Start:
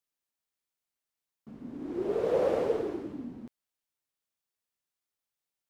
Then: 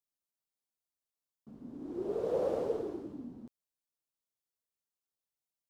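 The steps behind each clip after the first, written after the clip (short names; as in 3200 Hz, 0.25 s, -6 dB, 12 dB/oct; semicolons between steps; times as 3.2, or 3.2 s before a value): bell 2100 Hz -9 dB 1.3 oct; gain -4.5 dB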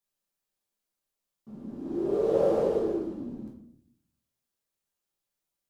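reverb RT60 0.65 s, pre-delay 5 ms, DRR -3 dB; gain +2 dB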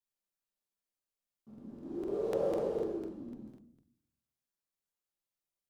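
crackling interface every 0.25 s, samples 2048, repeat, from 0.49; gain -8 dB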